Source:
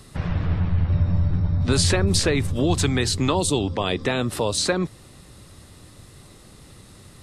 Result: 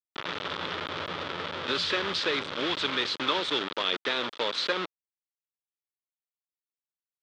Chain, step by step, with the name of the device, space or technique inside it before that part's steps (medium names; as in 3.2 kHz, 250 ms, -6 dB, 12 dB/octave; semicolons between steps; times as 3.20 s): hand-held game console (bit crusher 4-bit; cabinet simulation 420–4300 Hz, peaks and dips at 730 Hz -8 dB, 1.3 kHz +5 dB, 3.4 kHz +8 dB); trim -5 dB